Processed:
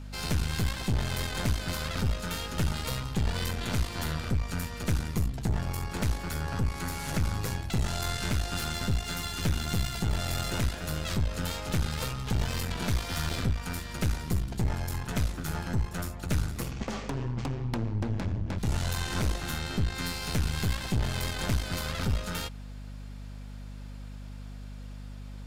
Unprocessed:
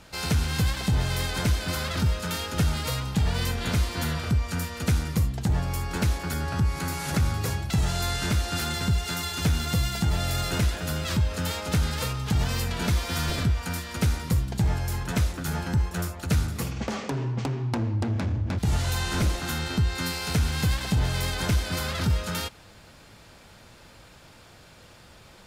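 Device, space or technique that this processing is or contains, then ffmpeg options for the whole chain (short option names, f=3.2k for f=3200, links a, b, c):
valve amplifier with mains hum: -af "aeval=exprs='(tanh(12.6*val(0)+0.8)-tanh(0.8))/12.6':c=same,aeval=exprs='val(0)+0.01*(sin(2*PI*50*n/s)+sin(2*PI*2*50*n/s)/2+sin(2*PI*3*50*n/s)/3+sin(2*PI*4*50*n/s)/4+sin(2*PI*5*50*n/s)/5)':c=same"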